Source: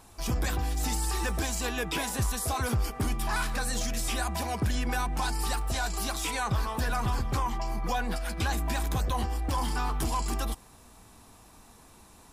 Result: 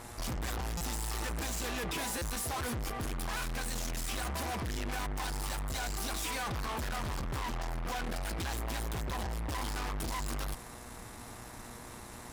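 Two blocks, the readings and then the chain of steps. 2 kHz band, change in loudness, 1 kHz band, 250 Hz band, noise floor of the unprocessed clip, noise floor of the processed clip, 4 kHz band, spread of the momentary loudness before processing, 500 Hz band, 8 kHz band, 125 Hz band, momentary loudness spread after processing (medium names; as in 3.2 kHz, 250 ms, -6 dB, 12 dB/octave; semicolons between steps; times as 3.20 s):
-5.0 dB, -6.0 dB, -6.5 dB, -6.0 dB, -54 dBFS, -48 dBFS, -4.0 dB, 2 LU, -4.5 dB, -4.5 dB, -7.0 dB, 12 LU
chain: valve stage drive 43 dB, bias 0.55; mains buzz 120 Hz, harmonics 18, -62 dBFS -2 dB/octave; buffer glitch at 0.77/2.18 s, samples 256, times 5; trim +8.5 dB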